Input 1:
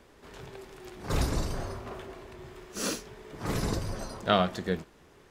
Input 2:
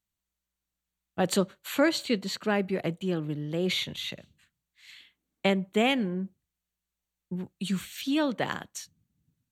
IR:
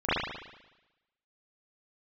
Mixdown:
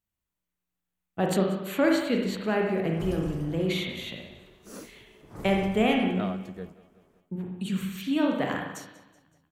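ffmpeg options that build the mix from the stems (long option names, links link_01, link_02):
-filter_complex "[0:a]adelay=1900,volume=-8.5dB,asplit=2[link_01][link_02];[link_02]volume=-19dB[link_03];[1:a]equalizer=frequency=2800:width=0.92:gain=7.5,volume=-1.5dB,asplit=3[link_04][link_05][link_06];[link_05]volume=-14dB[link_07];[link_06]volume=-18dB[link_08];[2:a]atrim=start_sample=2205[link_09];[link_07][link_09]afir=irnorm=-1:irlink=0[link_10];[link_03][link_08]amix=inputs=2:normalize=0,aecho=0:1:188|376|564|752|940|1128|1316|1504:1|0.53|0.281|0.149|0.0789|0.0418|0.0222|0.0117[link_11];[link_01][link_04][link_10][link_11]amix=inputs=4:normalize=0,equalizer=frequency=3500:width=0.55:gain=-11.5"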